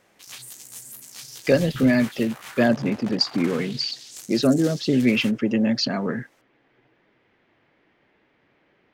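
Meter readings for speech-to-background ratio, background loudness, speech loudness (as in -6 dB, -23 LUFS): 16.5 dB, -39.0 LUFS, -22.5 LUFS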